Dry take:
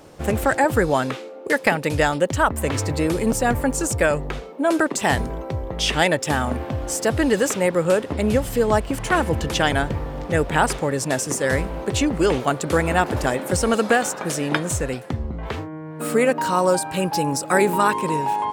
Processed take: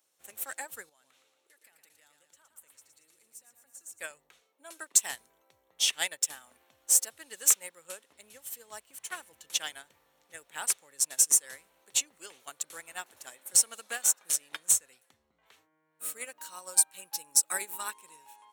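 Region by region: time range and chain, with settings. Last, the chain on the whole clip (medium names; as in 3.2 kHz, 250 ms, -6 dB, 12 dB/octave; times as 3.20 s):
0.89–4.00 s: compression 4:1, threshold -33 dBFS + feedback delay 115 ms, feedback 58%, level -6.5 dB
whole clip: differentiator; band-stop 4.9 kHz, Q 9.2; upward expansion 2.5:1, over -39 dBFS; trim +7 dB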